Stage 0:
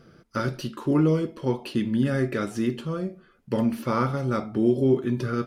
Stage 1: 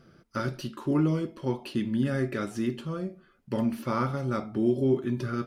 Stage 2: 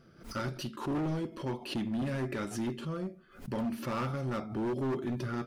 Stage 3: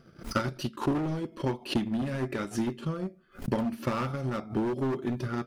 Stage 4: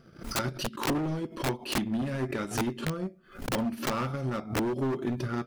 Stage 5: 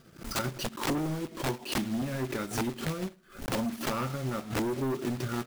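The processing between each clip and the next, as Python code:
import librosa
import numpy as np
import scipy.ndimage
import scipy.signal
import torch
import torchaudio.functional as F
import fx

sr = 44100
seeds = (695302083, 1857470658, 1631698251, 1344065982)

y1 = fx.notch(x, sr, hz=470.0, q=12.0)
y1 = y1 * 10.0 ** (-3.5 / 20.0)
y2 = np.clip(y1, -10.0 ** (-26.5 / 20.0), 10.0 ** (-26.5 / 20.0))
y2 = fx.pre_swell(y2, sr, db_per_s=120.0)
y2 = y2 * 10.0 ** (-3.0 / 20.0)
y3 = fx.transient(y2, sr, attack_db=10, sustain_db=-5)
y3 = y3 * 10.0 ** (1.5 / 20.0)
y4 = (np.mod(10.0 ** (23.0 / 20.0) * y3 + 1.0, 2.0) - 1.0) / 10.0 ** (23.0 / 20.0)
y4 = fx.pre_swell(y4, sr, db_per_s=140.0)
y5 = fx.block_float(y4, sr, bits=3)
y5 = y5 * 10.0 ** (-1.5 / 20.0)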